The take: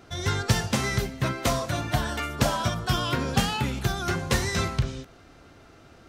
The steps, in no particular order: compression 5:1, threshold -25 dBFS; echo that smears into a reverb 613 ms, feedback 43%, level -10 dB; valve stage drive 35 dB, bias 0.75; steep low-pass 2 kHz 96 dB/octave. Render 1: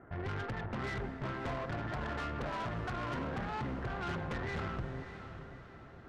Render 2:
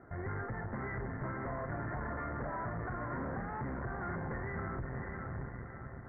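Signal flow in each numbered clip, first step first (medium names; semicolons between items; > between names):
steep low-pass > compression > valve stage > echo that smears into a reverb; echo that smears into a reverb > compression > valve stage > steep low-pass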